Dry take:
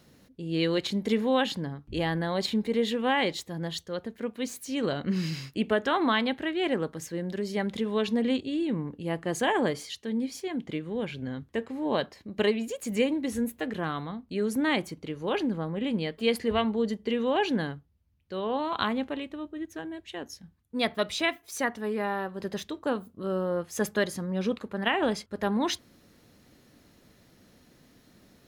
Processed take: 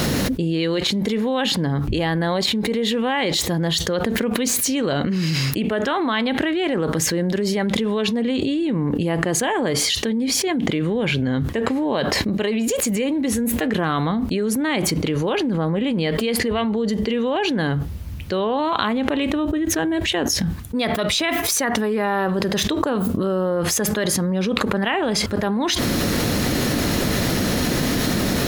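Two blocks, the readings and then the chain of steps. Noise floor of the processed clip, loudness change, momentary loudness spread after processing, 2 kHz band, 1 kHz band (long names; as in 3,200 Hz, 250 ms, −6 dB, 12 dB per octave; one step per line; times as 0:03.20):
−26 dBFS, +8.5 dB, 2 LU, +8.0 dB, +7.0 dB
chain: envelope flattener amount 100%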